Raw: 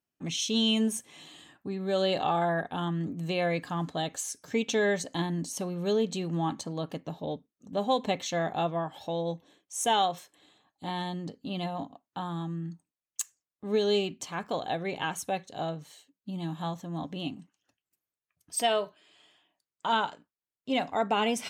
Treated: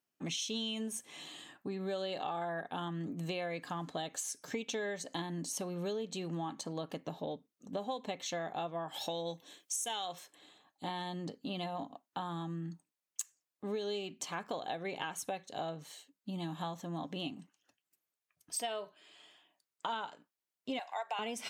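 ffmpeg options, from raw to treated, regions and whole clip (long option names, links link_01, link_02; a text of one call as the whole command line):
ffmpeg -i in.wav -filter_complex "[0:a]asettb=1/sr,asplit=3[link_01][link_02][link_03];[link_01]atrim=end=8.884[link_04];[link_02]atrim=start=8.88:end=10.13,asetpts=PTS-STARTPTS,afade=type=in:duration=0.004:curve=qsin,afade=type=out:start_time=1.246:duration=0.004:curve=qsin,highshelf=frequency=2300:gain=12,acompressor=threshold=-24dB:ratio=3:attack=3.2:release=140:knee=1:detection=peak[link_05];[link_03]atrim=start=10.126[link_06];[link_04][link_05]acrossfade=duration=0.004:curve1=hsin:curve2=qsin[link_07];[link_07][link_06]acrossfade=duration=0.004:curve1=qsin:curve2=hsin,asettb=1/sr,asplit=3[link_08][link_09][link_10];[link_08]atrim=end=20.794[link_11];[link_09]atrim=start=20.79:end=21.19,asetpts=PTS-STARTPTS,afade=type=in:duration=0.004:curve=qsin,afade=type=out:start_time=0.396:duration=0.004:curve=qsin,highpass=frequency=700:width=0.5412,highpass=frequency=700:width=1.3066,acompressor=mode=upward:threshold=-34dB:ratio=2.5:attack=3.2:release=140:knee=2.83:detection=peak,bandreject=frequency=1300:width=5.4[link_12];[link_10]atrim=start=21.186[link_13];[link_11][link_12]acrossfade=duration=0.004:curve1=hsin:curve2=qsin[link_14];[link_14][link_13]acrossfade=duration=0.004:curve1=qsin:curve2=hsin,highpass=frequency=240:poles=1,acompressor=threshold=-37dB:ratio=6,volume=1.5dB" out.wav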